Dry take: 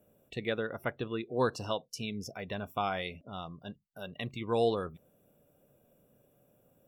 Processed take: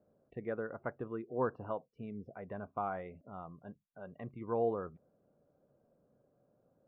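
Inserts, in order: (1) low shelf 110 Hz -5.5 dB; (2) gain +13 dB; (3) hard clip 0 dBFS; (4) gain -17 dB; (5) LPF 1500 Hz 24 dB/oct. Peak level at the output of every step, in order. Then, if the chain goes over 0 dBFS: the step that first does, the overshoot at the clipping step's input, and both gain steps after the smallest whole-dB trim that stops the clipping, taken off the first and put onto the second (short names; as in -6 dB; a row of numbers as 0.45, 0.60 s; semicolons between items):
-16.0, -3.0, -3.0, -20.0, -20.5 dBFS; no overload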